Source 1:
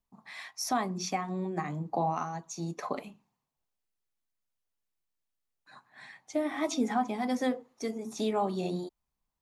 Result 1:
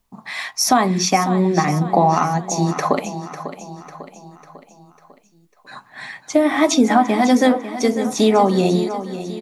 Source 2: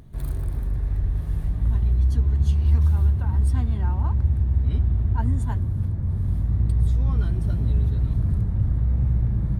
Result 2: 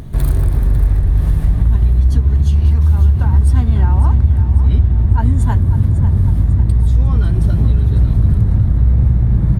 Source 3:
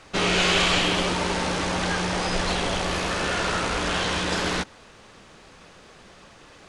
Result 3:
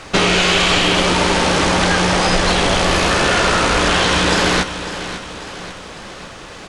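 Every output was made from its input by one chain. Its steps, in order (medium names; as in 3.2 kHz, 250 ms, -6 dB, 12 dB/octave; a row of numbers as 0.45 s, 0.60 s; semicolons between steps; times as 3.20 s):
compression, threshold -25 dBFS; on a send: feedback delay 548 ms, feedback 50%, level -12 dB; on the sum: peak normalisation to -1.5 dBFS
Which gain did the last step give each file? +16.5 dB, +16.0 dB, +13.5 dB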